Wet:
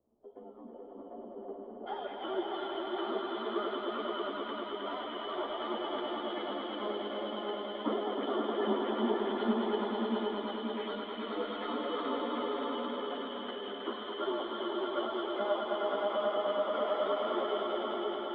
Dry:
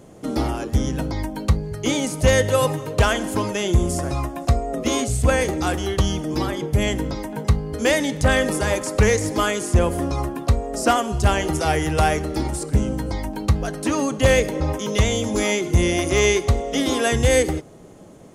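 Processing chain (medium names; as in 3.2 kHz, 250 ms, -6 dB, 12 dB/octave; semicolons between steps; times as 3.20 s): four frequency bands reordered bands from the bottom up 2413; Chebyshev high-pass 210 Hz, order 10; tilt EQ -3 dB/octave; compression, threshold -25 dBFS, peak gain reduction 9.5 dB; crossover distortion -52 dBFS; inverse Chebyshev low-pass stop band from 4.4 kHz, stop band 80 dB, from 1.86 s stop band from 9.2 kHz; echo with a slow build-up 106 ms, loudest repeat 5, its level -4 dB; three-phase chorus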